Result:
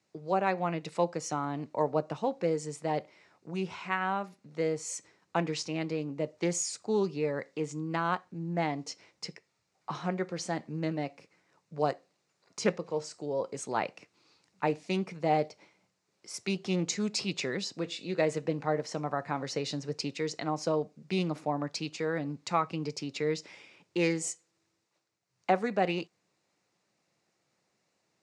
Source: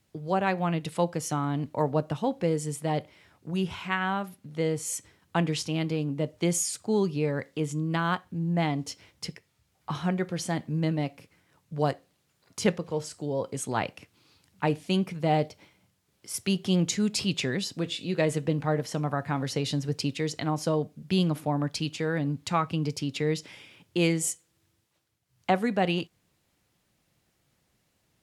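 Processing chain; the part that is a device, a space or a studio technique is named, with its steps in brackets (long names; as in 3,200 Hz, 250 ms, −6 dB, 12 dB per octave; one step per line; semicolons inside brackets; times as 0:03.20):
full-range speaker at full volume (highs frequency-modulated by the lows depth 0.13 ms; loudspeaker in its box 230–7,400 Hz, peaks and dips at 260 Hz −5 dB, 1,600 Hz −3 dB, 3,200 Hz −9 dB)
level −1 dB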